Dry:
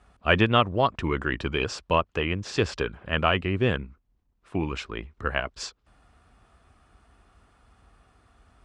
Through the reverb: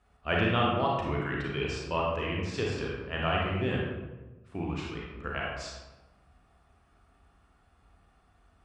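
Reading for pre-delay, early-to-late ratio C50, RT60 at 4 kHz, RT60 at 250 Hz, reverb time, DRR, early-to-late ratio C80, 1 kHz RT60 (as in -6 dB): 30 ms, 0.0 dB, 0.70 s, 1.4 s, 1.1 s, -3.5 dB, 3.0 dB, 1.1 s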